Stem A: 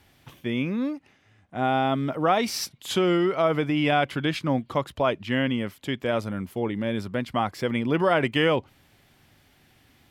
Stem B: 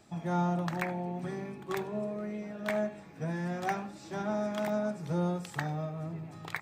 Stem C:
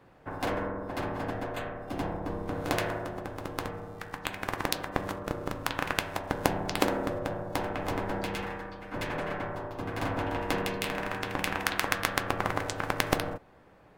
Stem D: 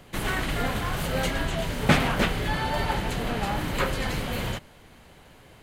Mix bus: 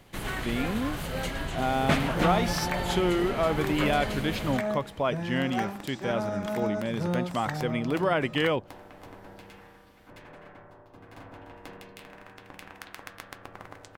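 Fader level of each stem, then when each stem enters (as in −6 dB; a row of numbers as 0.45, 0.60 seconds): −4.0, +1.0, −15.0, −5.5 decibels; 0.00, 1.90, 1.15, 0.00 seconds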